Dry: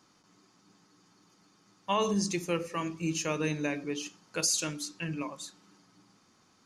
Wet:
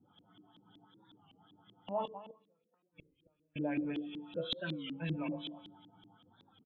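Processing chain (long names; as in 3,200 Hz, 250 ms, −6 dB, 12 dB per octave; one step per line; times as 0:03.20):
hearing-aid frequency compression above 2,800 Hz 4 to 1
0:04.07–0:05.18: comb filter 5.7 ms, depth 63%
in parallel at 0 dB: downward compressor 6 to 1, threshold −42 dBFS, peak gain reduction 20 dB
on the sum: brickwall limiter −20 dBFS, peak gain reduction 8.5 dB
tuned comb filter 98 Hz, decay 1.1 s, harmonics odd, mix 80%
0:02.05–0:03.56: gate with flip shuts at −39 dBFS, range −42 dB
spectral peaks only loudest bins 64
single-tap delay 254 ms −14.5 dB
convolution reverb RT60 0.60 s, pre-delay 3 ms, DRR 13 dB
auto-filter low-pass saw up 5.3 Hz 260–3,300 Hz
wow of a warped record 33 1/3 rpm, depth 160 cents
level +1.5 dB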